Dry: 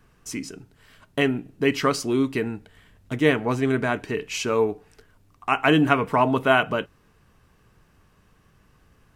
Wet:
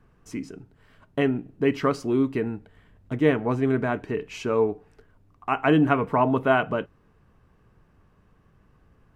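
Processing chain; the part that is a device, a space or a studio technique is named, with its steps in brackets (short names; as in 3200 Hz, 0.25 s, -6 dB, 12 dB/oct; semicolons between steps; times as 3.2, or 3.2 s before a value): through cloth (high shelf 2400 Hz -14.5 dB)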